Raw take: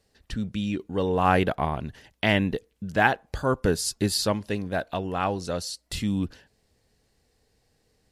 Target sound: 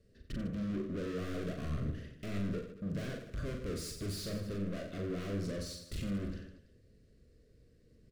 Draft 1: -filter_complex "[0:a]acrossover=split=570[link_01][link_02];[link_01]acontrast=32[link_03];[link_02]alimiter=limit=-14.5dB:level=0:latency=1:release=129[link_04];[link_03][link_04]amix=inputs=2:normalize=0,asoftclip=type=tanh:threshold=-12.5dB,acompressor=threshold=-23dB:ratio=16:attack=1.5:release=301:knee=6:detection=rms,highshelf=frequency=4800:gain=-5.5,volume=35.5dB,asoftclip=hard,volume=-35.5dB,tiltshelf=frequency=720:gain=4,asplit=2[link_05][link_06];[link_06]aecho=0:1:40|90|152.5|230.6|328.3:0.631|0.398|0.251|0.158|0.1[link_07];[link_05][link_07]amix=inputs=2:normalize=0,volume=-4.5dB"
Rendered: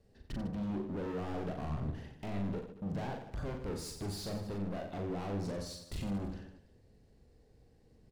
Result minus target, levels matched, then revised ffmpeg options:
downward compressor: peak gain reduction +9 dB; 1,000 Hz band +8.0 dB; soft clipping: distortion −7 dB
-filter_complex "[0:a]acrossover=split=570[link_01][link_02];[link_01]acontrast=32[link_03];[link_02]alimiter=limit=-14.5dB:level=0:latency=1:release=129[link_04];[link_03][link_04]amix=inputs=2:normalize=0,asoftclip=type=tanh:threshold=-20.5dB,highshelf=frequency=4800:gain=-5.5,volume=35.5dB,asoftclip=hard,volume=-35.5dB,asuperstop=centerf=850:order=4:qfactor=1.6,tiltshelf=frequency=720:gain=4,asplit=2[link_05][link_06];[link_06]aecho=0:1:40|90|152.5|230.6|328.3:0.631|0.398|0.251|0.158|0.1[link_07];[link_05][link_07]amix=inputs=2:normalize=0,volume=-4.5dB"

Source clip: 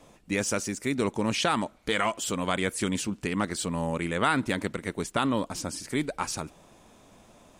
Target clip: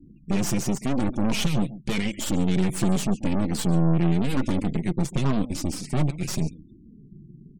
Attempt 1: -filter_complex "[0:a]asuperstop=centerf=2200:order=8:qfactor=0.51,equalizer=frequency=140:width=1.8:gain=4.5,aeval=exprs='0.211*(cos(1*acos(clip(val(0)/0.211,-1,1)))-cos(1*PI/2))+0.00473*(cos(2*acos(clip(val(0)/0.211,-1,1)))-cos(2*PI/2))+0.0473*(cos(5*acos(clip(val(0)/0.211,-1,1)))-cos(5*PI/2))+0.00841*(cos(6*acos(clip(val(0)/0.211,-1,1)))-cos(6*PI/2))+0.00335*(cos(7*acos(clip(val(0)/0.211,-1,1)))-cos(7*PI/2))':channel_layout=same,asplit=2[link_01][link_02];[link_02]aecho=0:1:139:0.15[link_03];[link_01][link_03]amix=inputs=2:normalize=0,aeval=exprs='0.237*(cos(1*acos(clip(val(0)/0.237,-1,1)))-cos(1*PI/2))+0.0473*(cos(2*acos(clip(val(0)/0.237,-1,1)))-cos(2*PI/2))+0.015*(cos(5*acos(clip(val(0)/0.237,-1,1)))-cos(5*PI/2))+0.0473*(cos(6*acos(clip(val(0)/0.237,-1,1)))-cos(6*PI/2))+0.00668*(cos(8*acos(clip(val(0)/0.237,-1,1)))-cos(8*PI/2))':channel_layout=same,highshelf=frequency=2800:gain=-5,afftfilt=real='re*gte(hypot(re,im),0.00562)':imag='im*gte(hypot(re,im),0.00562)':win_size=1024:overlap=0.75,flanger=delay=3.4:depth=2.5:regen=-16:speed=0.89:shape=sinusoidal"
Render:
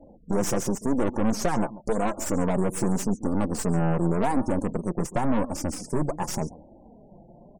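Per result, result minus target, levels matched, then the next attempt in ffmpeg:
1,000 Hz band +6.5 dB; 125 Hz band −3.5 dB
-filter_complex "[0:a]asuperstop=centerf=900:order=8:qfactor=0.51,equalizer=frequency=140:width=1.8:gain=4.5,aeval=exprs='0.211*(cos(1*acos(clip(val(0)/0.211,-1,1)))-cos(1*PI/2))+0.00473*(cos(2*acos(clip(val(0)/0.211,-1,1)))-cos(2*PI/2))+0.0473*(cos(5*acos(clip(val(0)/0.211,-1,1)))-cos(5*PI/2))+0.00841*(cos(6*acos(clip(val(0)/0.211,-1,1)))-cos(6*PI/2))+0.00335*(cos(7*acos(clip(val(0)/0.211,-1,1)))-cos(7*PI/2))':channel_layout=same,asplit=2[link_01][link_02];[link_02]aecho=0:1:139:0.15[link_03];[link_01][link_03]amix=inputs=2:normalize=0,aeval=exprs='0.237*(cos(1*acos(clip(val(0)/0.237,-1,1)))-cos(1*PI/2))+0.0473*(cos(2*acos(clip(val(0)/0.237,-1,1)))-cos(2*PI/2))+0.015*(cos(5*acos(clip(val(0)/0.237,-1,1)))-cos(5*PI/2))+0.0473*(cos(6*acos(clip(val(0)/0.237,-1,1)))-cos(6*PI/2))+0.00668*(cos(8*acos(clip(val(0)/0.237,-1,1)))-cos(8*PI/2))':channel_layout=same,highshelf=frequency=2800:gain=-5,afftfilt=real='re*gte(hypot(re,im),0.00562)':imag='im*gte(hypot(re,im),0.00562)':win_size=1024:overlap=0.75,flanger=delay=3.4:depth=2.5:regen=-16:speed=0.89:shape=sinusoidal"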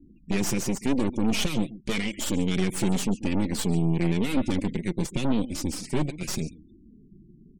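125 Hz band −2.5 dB
-filter_complex "[0:a]asuperstop=centerf=900:order=8:qfactor=0.51,equalizer=frequency=140:width=1.8:gain=15,aeval=exprs='0.211*(cos(1*acos(clip(val(0)/0.211,-1,1)))-cos(1*PI/2))+0.00473*(cos(2*acos(clip(val(0)/0.211,-1,1)))-cos(2*PI/2))+0.0473*(cos(5*acos(clip(val(0)/0.211,-1,1)))-cos(5*PI/2))+0.00841*(cos(6*acos(clip(val(0)/0.211,-1,1)))-cos(6*PI/2))+0.00335*(cos(7*acos(clip(val(0)/0.211,-1,1)))-cos(7*PI/2))':channel_layout=same,asplit=2[link_01][link_02];[link_02]aecho=0:1:139:0.15[link_03];[link_01][link_03]amix=inputs=2:normalize=0,aeval=exprs='0.237*(cos(1*acos(clip(val(0)/0.237,-1,1)))-cos(1*PI/2))+0.0473*(cos(2*acos(clip(val(0)/0.237,-1,1)))-cos(2*PI/2))+0.015*(cos(5*acos(clip(val(0)/0.237,-1,1)))-cos(5*PI/2))+0.0473*(cos(6*acos(clip(val(0)/0.237,-1,1)))-cos(6*PI/2))+0.00668*(cos(8*acos(clip(val(0)/0.237,-1,1)))-cos(8*PI/2))':channel_layout=same,highshelf=frequency=2800:gain=-5,afftfilt=real='re*gte(hypot(re,im),0.00562)':imag='im*gte(hypot(re,im),0.00562)':win_size=1024:overlap=0.75,flanger=delay=3.4:depth=2.5:regen=-16:speed=0.89:shape=sinusoidal"

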